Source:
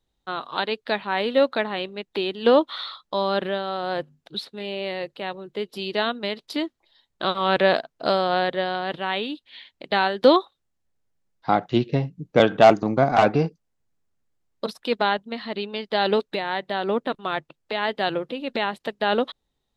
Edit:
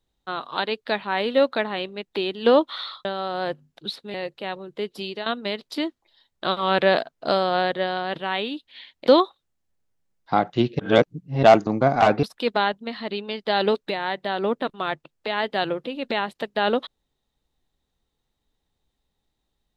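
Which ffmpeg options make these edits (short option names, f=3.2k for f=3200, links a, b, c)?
-filter_complex "[0:a]asplit=8[a][b][c][d][e][f][g][h];[a]atrim=end=3.052[i];[b]atrim=start=3.538:end=4.632[j];[c]atrim=start=4.918:end=6.04,asetpts=PTS-STARTPTS,afade=t=out:st=0.872:d=0.25:silence=0.223872[k];[d]atrim=start=6.04:end=9.852,asetpts=PTS-STARTPTS,afade=t=in:d=0.004:c=hsin:silence=0.223872[l];[e]atrim=start=10.228:end=11.952[m];[f]atrim=start=11.948:end=12.592,asetpts=PTS-STARTPTS,areverse[n];[g]atrim=start=12.588:end=13.392[o];[h]atrim=start=14.678[p];[i][j]acrossfade=d=0.004:c1=hsin:c2=hsin[q];[k][l]concat=n=2:v=0:a=1[r];[q][r]acrossfade=d=0.004:c1=hsin:c2=hsin[s];[s][m]acrossfade=d=0.004:c1=hsin:c2=hsin[t];[t][n]acrossfade=d=0.004:c1=hsin:c2=hsin[u];[u][o]acrossfade=d=0.004:c1=hsin:c2=hsin[v];[v][p]acrossfade=d=0.004:c1=hsin:c2=hsin"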